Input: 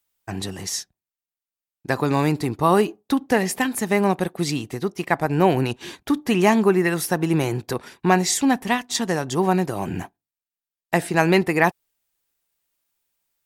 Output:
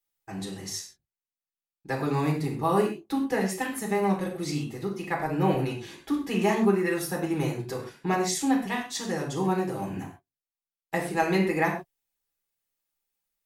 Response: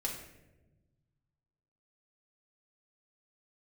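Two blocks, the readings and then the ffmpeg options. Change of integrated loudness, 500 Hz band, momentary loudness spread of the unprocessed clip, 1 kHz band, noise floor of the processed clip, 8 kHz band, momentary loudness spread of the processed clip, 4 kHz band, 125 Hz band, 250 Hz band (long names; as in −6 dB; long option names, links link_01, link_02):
−6.5 dB, −6.0 dB, 11 LU, −6.5 dB, below −85 dBFS, −7.5 dB, 11 LU, −8.0 dB, −6.0 dB, −6.0 dB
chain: -filter_complex "[1:a]atrim=start_sample=2205,atrim=end_sample=6174[link_01];[0:a][link_01]afir=irnorm=-1:irlink=0,volume=-9dB"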